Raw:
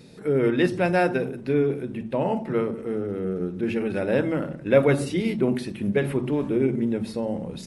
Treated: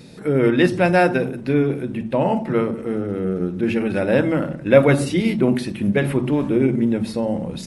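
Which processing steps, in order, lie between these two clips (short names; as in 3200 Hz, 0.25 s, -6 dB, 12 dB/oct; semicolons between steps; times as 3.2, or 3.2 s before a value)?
bell 420 Hz -5.5 dB 0.23 oct; gain +6 dB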